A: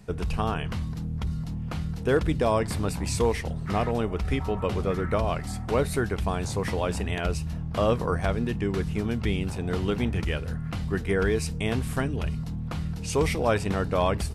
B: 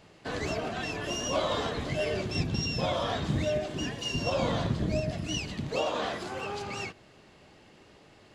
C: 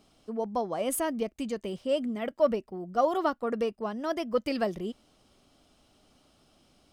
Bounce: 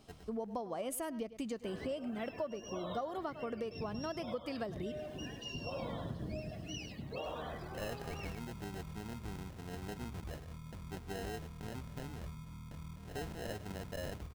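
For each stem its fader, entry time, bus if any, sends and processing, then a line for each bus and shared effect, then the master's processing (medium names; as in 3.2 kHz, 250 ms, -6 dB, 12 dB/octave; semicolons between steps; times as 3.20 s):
-17.0 dB, 0.00 s, no send, echo send -20.5 dB, sample-and-hold 38×; auto duck -24 dB, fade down 0.55 s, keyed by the third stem
-11.0 dB, 1.40 s, no send, echo send -8.5 dB, loudest bins only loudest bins 64; bit crusher 10-bit
-0.5 dB, 0.00 s, no send, echo send -18 dB, none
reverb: none
echo: delay 102 ms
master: compression 10:1, threshold -36 dBFS, peak gain reduction 18 dB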